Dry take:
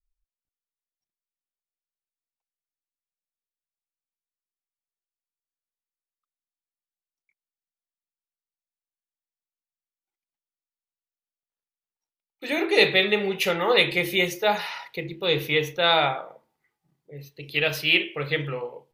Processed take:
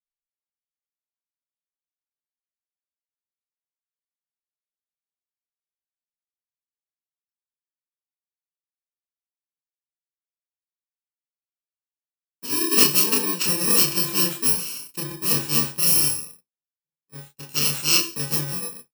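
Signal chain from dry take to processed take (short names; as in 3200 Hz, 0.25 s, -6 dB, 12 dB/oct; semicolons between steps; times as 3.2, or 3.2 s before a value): FFT order left unsorted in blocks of 64 samples; expander -38 dBFS; early reflections 27 ms -3.5 dB, 39 ms -9 dB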